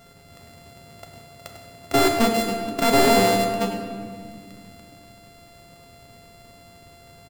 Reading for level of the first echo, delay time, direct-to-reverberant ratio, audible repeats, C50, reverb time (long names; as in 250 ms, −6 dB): −13.5 dB, 102 ms, 2.5 dB, 1, 5.0 dB, 2.0 s